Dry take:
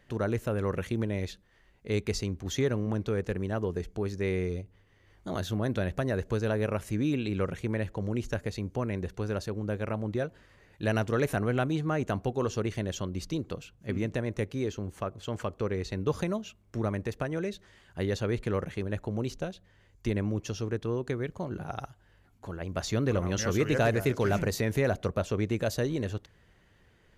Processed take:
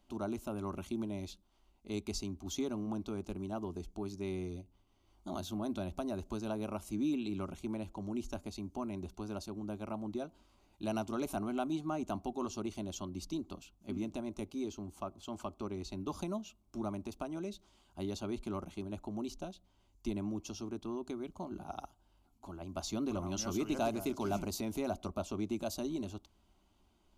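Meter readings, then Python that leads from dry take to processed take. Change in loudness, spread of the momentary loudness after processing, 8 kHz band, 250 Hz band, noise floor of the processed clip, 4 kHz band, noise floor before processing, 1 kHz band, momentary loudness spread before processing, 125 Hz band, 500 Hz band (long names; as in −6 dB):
−8.0 dB, 8 LU, −4.5 dB, −5.0 dB, −71 dBFS, −6.5 dB, −63 dBFS, −5.0 dB, 9 LU, −14.0 dB, −10.0 dB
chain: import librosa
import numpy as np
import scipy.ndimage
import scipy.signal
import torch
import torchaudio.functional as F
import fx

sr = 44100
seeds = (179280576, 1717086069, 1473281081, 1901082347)

y = fx.fixed_phaser(x, sr, hz=480.0, stages=6)
y = F.gain(torch.from_numpy(y), -3.5).numpy()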